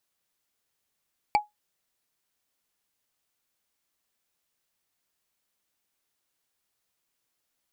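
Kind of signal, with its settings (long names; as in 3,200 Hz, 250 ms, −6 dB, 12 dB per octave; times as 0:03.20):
struck wood, lowest mode 837 Hz, decay 0.16 s, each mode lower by 6 dB, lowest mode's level −14 dB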